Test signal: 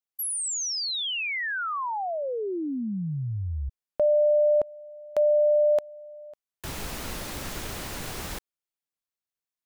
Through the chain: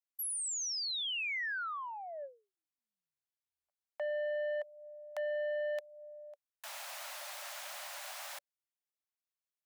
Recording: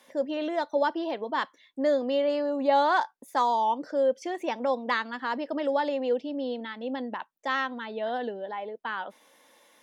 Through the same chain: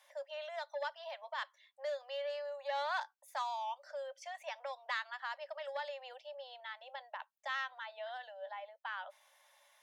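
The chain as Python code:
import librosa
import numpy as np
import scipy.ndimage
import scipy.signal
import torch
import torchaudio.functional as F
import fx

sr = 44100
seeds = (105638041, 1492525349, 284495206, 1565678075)

y = scipy.signal.sosfilt(scipy.signal.ellip(6, 1.0, 70, 570.0, 'highpass', fs=sr, output='sos'), x)
y = fx.dynamic_eq(y, sr, hz=760.0, q=1.1, threshold_db=-37.0, ratio=6.0, max_db=-8)
y = fx.transformer_sat(y, sr, knee_hz=1100.0)
y = F.gain(torch.from_numpy(y), -6.5).numpy()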